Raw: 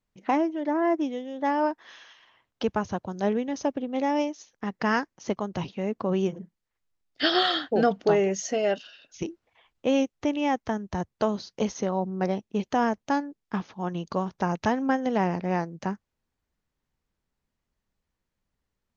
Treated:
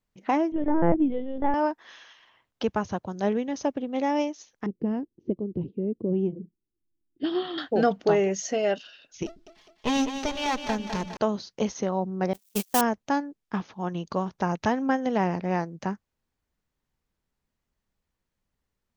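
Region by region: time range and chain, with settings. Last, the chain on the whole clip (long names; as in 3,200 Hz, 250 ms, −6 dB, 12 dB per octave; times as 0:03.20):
0:00.52–0:01.54: spectral tilt −3 dB per octave + linear-prediction vocoder at 8 kHz pitch kept
0:04.66–0:07.58: drawn EQ curve 350 Hz 0 dB, 580 Hz −19 dB, 1,400 Hz −17 dB, 2,900 Hz +6 dB + envelope-controlled low-pass 330–1,000 Hz up, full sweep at −20 dBFS
0:09.26–0:11.17: lower of the sound and its delayed copy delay 4.7 ms + parametric band 4,600 Hz +8.5 dB 1.2 octaves + echo with a time of its own for lows and highs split 300 Hz, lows 101 ms, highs 205 ms, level −8 dB
0:12.33–0:12.81: spike at every zero crossing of −21 dBFS + noise gate −26 dBFS, range −40 dB + high-shelf EQ 2,900 Hz +11 dB
whole clip: no processing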